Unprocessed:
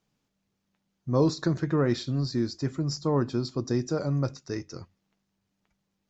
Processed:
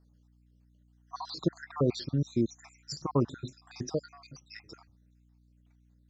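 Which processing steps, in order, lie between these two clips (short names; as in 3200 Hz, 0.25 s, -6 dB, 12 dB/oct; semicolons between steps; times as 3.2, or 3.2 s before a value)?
random spectral dropouts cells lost 65%; hum 60 Hz, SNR 28 dB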